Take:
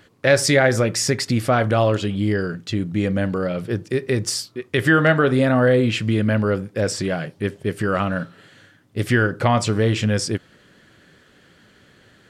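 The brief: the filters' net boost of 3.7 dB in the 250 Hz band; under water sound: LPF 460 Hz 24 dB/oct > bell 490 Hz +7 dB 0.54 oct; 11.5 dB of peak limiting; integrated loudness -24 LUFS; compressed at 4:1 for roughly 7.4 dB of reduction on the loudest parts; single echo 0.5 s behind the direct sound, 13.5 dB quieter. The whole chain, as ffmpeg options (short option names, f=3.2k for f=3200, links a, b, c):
-af "equalizer=f=250:t=o:g=4,acompressor=threshold=-19dB:ratio=4,alimiter=limit=-17dB:level=0:latency=1,lowpass=f=460:w=0.5412,lowpass=f=460:w=1.3066,equalizer=f=490:t=o:w=0.54:g=7,aecho=1:1:500:0.211,volume=3dB"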